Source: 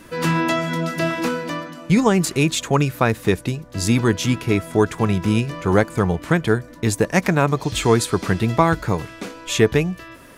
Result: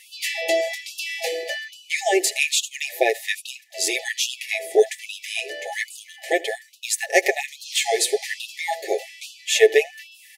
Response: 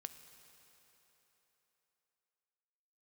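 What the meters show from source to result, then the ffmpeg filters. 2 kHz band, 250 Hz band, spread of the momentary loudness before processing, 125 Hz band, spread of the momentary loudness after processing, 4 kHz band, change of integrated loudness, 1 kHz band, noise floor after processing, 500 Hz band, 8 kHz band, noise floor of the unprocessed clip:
+1.0 dB, −18.0 dB, 7 LU, below −40 dB, 12 LU, +3.5 dB, −3.0 dB, −6.5 dB, −49 dBFS, −1.0 dB, +3.5 dB, −42 dBFS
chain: -af "afftfilt=real='re*(1-between(b*sr/4096,830,1700))':imag='im*(1-between(b*sr/4096,830,1700))':win_size=4096:overlap=0.75,aecho=1:1:7.4:0.68,aecho=1:1:80|160:0.0668|0.01,afftfilt=real='re*gte(b*sr/1024,310*pow(2600/310,0.5+0.5*sin(2*PI*1.2*pts/sr)))':imag='im*gte(b*sr/1024,310*pow(2600/310,0.5+0.5*sin(2*PI*1.2*pts/sr)))':win_size=1024:overlap=0.75,volume=2dB"

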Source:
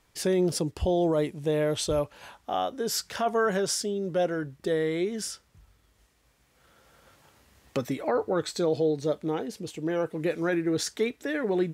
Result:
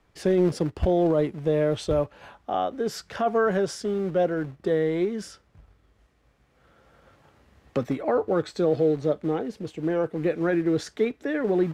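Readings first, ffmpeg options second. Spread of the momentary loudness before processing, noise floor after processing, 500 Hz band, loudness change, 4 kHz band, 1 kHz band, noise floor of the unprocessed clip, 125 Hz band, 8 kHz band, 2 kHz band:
8 LU, −64 dBFS, +3.0 dB, +2.5 dB, −5.5 dB, +2.0 dB, −66 dBFS, +3.5 dB, −9.5 dB, 0.0 dB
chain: -filter_complex "[0:a]acrossover=split=230[link_01][link_02];[link_01]acrusher=bits=2:mode=log:mix=0:aa=0.000001[link_03];[link_03][link_02]amix=inputs=2:normalize=0,lowpass=frequency=1500:poles=1,bandreject=frequency=940:width=16,volume=3.5dB"

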